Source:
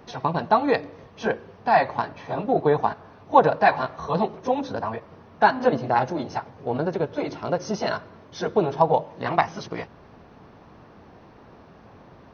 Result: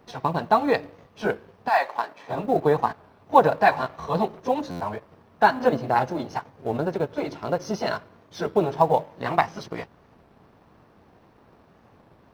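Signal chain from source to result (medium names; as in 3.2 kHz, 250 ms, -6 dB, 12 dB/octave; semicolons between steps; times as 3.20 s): companding laws mixed up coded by A; 1.68–2.29 s: high-pass 840 Hz -> 260 Hz 12 dB/octave; buffer glitch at 4.71 s, samples 512, times 8; warped record 33 1/3 rpm, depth 100 cents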